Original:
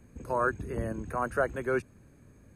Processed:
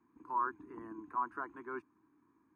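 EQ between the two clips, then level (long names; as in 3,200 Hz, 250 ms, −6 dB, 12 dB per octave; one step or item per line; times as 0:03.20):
pair of resonant band-passes 560 Hz, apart 1.7 octaves
low-shelf EQ 440 Hz −9.5 dB
+4.0 dB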